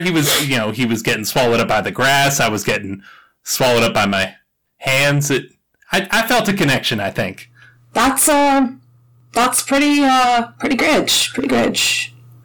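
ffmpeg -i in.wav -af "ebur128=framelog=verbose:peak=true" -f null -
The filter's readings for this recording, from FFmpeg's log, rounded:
Integrated loudness:
  I:         -15.4 LUFS
  Threshold: -26.0 LUFS
Loudness range:
  LRA:         2.6 LU
  Threshold: -36.2 LUFS
  LRA low:   -17.4 LUFS
  LRA high:  -14.7 LUFS
True peak:
  Peak:       -6.8 dBFS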